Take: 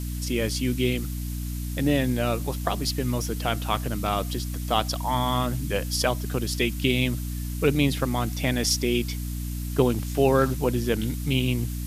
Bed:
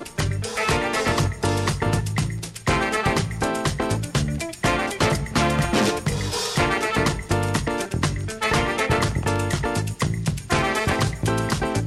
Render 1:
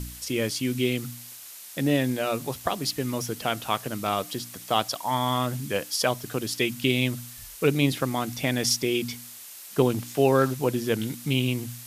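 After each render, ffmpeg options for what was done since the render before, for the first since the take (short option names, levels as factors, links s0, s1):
-af "bandreject=f=60:t=h:w=4,bandreject=f=120:t=h:w=4,bandreject=f=180:t=h:w=4,bandreject=f=240:t=h:w=4,bandreject=f=300:t=h:w=4"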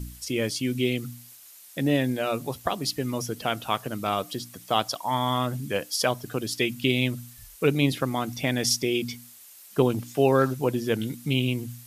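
-af "afftdn=nr=8:nf=-43"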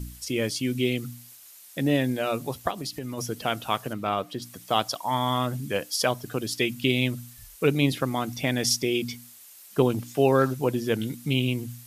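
-filter_complex "[0:a]asplit=3[s0][s1][s2];[s0]afade=t=out:st=2.7:d=0.02[s3];[s1]acompressor=threshold=0.0355:ratio=6:attack=3.2:release=140:knee=1:detection=peak,afade=t=in:st=2.7:d=0.02,afade=t=out:st=3.17:d=0.02[s4];[s2]afade=t=in:st=3.17:d=0.02[s5];[s3][s4][s5]amix=inputs=3:normalize=0,asettb=1/sr,asplit=3[s6][s7][s8];[s6]atrim=end=3.934[s9];[s7]atrim=start=3.93:end=4.42,asetpts=PTS-STARTPTS,afade=t=in:d=0.004:c=qsin,afade=t=out:st=0.486:d=0.004:c=qsin,bass=f=250:g=-1,treble=f=4000:g=-11[s10];[s8]atrim=start=4.416[s11];[s9][s10]acrossfade=d=0.004:c1=hsin:c2=qsin[s12];[s12][s11]acrossfade=d=0.004:c1=qsin:c2=hsin"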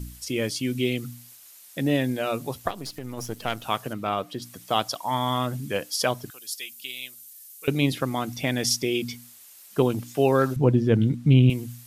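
-filter_complex "[0:a]asettb=1/sr,asplit=3[s0][s1][s2];[s0]atrim=end=2.684[s3];[s1]atrim=start=2.68:end=3.64,asetpts=PTS-STARTPTS,afade=t=in:d=0.004:c=qsin,afade=t=out:st=0.956:d=0.004:c=qsin,aeval=exprs='if(lt(val(0),0),0.447*val(0),val(0))':c=same[s4];[s2]atrim=start=3.636[s5];[s3][s4]acrossfade=d=0.004:c1=hsin:c2=qsin[s6];[s6][s5]acrossfade=d=0.004:c1=qsin:c2=hsin,asettb=1/sr,asplit=3[s7][s8][s9];[s7]atrim=end=6.304[s10];[s8]atrim=start=6.3:end=7.68,asetpts=PTS-STARTPTS,afade=t=in:d=0.004:c=qsin,afade=t=out:st=1.376:d=0.004:c=qsin,aderivative[s11];[s9]atrim=start=7.676[s12];[s10][s11]acrossfade=d=0.004:c1=hsin:c2=qsin[s13];[s13][s12]acrossfade=d=0.004:c1=qsin:c2=hsin,asettb=1/sr,asplit=3[s14][s15][s16];[s14]atrim=end=10.564[s17];[s15]atrim=start=10.56:end=11.5,asetpts=PTS-STARTPTS,afade=t=in:d=0.004:c=qsin,afade=t=out:st=0.936:d=0.004:c=qsin,aemphasis=mode=reproduction:type=riaa[s18];[s16]atrim=start=11.496[s19];[s17][s18]acrossfade=d=0.004:c1=hsin:c2=qsin[s20];[s20][s19]acrossfade=d=0.004:c1=qsin:c2=hsin"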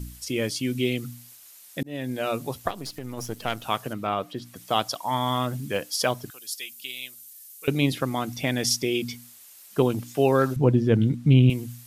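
-filter_complex "[0:a]asettb=1/sr,asplit=3[s0][s1][s2];[s0]atrim=end=3.964[s3];[s1]atrim=start=3.96:end=4.56,asetpts=PTS-STARTPTS,afade=t=in:d=0.004:c=qsin,afade=t=out:st=0.596:d=0.004:c=qsin,acrossover=split=3700[s4][s5];[s5]acompressor=threshold=0.00355:ratio=4:attack=1:release=60[s6];[s4][s6]amix=inputs=2:normalize=0[s7];[s2]atrim=start=4.556[s8];[s3][s7]acrossfade=d=0.004:c1=hsin:c2=qsin[s9];[s9][s8]acrossfade=d=0.004:c1=qsin:c2=hsin,asettb=1/sr,asplit=3[s10][s11][s12];[s10]atrim=end=5.254[s13];[s11]atrim=start=5.25:end=6.39,asetpts=PTS-STARTPTS,afade=t=in:d=0.004:c=qsin,afade=t=out:st=1.136:d=0.004:c=qsin,acrusher=bits=9:mode=log:mix=0:aa=0.000001[s14];[s12]atrim=start=6.386[s15];[s13][s14]acrossfade=d=0.004:c1=hsin:c2=qsin[s16];[s16][s15]acrossfade=d=0.004:c1=qsin:c2=hsin,asplit=2[s17][s18];[s17]atrim=end=1.83,asetpts=PTS-STARTPTS,afade=t=out:st=1.826:d=0.004:c=hsin[s19];[s18]atrim=start=1.83,asetpts=PTS-STARTPTS,afade=t=in:d=0.42[s20];[s19][s20]concat=n=2:v=0:a=1"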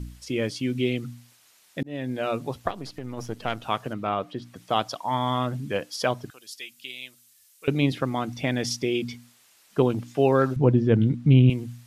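-af "aemphasis=mode=reproduction:type=50fm"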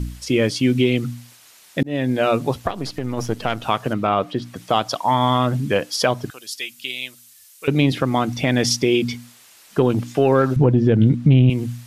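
-filter_complex "[0:a]asplit=2[s0][s1];[s1]acontrast=65,volume=1[s2];[s0][s2]amix=inputs=2:normalize=0,alimiter=limit=0.473:level=0:latency=1:release=149"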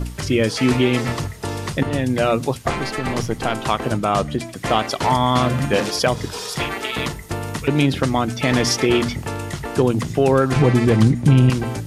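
-filter_complex "[1:a]volume=0.596[s0];[0:a][s0]amix=inputs=2:normalize=0"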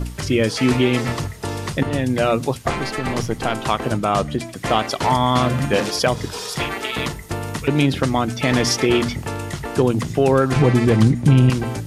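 -af anull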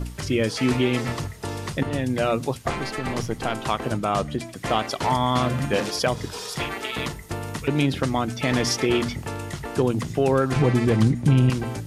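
-af "volume=0.596"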